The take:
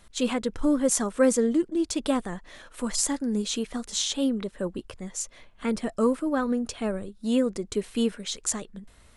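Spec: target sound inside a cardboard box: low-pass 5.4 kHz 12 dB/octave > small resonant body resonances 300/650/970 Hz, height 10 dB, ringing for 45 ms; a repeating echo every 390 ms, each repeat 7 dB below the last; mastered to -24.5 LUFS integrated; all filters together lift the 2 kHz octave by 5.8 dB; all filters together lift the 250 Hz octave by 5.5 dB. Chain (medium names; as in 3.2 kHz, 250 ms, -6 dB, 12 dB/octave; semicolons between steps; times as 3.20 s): low-pass 5.4 kHz 12 dB/octave; peaking EQ 250 Hz +6 dB; peaking EQ 2 kHz +7.5 dB; feedback delay 390 ms, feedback 45%, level -7 dB; small resonant body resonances 300/650/970 Hz, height 10 dB, ringing for 45 ms; trim -7 dB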